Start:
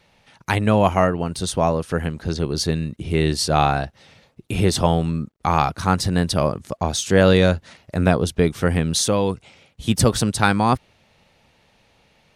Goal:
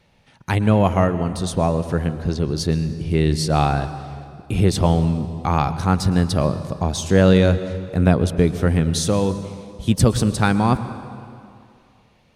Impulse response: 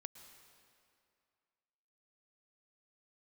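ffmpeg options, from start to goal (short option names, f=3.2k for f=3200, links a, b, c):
-filter_complex "[0:a]asplit=2[a][b];[1:a]atrim=start_sample=2205,lowshelf=f=460:g=10[c];[b][c]afir=irnorm=-1:irlink=0,volume=8.5dB[d];[a][d]amix=inputs=2:normalize=0,volume=-11dB"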